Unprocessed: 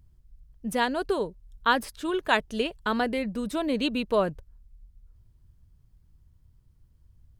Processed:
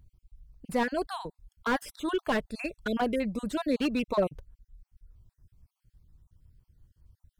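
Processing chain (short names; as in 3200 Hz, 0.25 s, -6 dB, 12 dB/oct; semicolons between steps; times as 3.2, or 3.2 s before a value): random spectral dropouts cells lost 36%; slew limiter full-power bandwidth 70 Hz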